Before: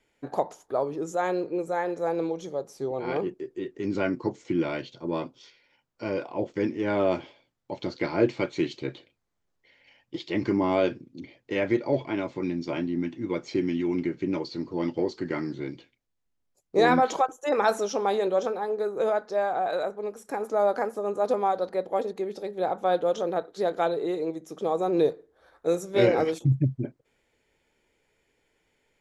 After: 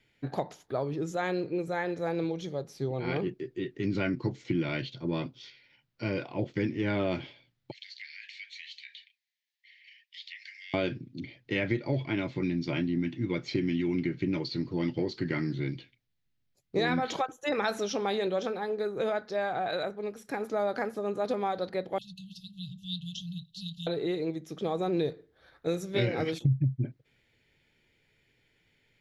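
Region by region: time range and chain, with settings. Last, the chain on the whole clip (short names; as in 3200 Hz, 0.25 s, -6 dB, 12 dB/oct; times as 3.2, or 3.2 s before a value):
7.71–10.74 steep high-pass 1700 Hz 96 dB/oct + compressor 3:1, threshold -47 dBFS
21.98–23.87 brick-wall FIR band-stop 190–2600 Hz + comb 5.8 ms, depth 46%
whole clip: graphic EQ 125/500/1000/2000/4000/8000 Hz +10/-4/-6/+4/+6/-8 dB; compressor 4:1, threshold -25 dBFS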